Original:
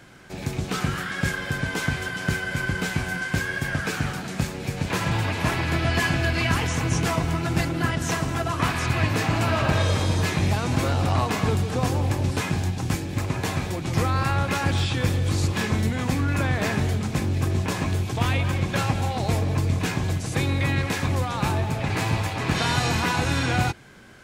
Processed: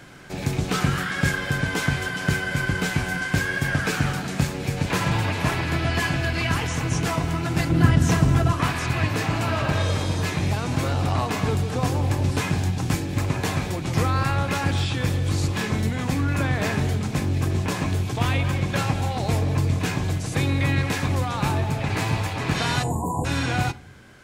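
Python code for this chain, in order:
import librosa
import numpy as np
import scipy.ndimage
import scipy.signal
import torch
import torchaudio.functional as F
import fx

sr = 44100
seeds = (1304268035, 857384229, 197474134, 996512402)

y = fx.rider(x, sr, range_db=10, speed_s=2.0)
y = fx.low_shelf(y, sr, hz=280.0, db=11.5, at=(7.7, 8.53))
y = fx.spec_erase(y, sr, start_s=22.83, length_s=0.42, low_hz=1100.0, high_hz=6700.0)
y = fx.room_shoebox(y, sr, seeds[0], volume_m3=710.0, walls='furnished', distance_m=0.36)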